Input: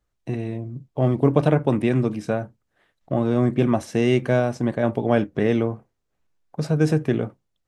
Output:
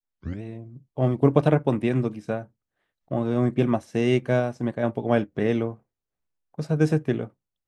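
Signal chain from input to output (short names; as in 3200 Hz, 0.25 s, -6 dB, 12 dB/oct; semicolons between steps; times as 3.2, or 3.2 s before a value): tape start at the beginning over 0.42 s; upward expander 1.5:1, over -36 dBFS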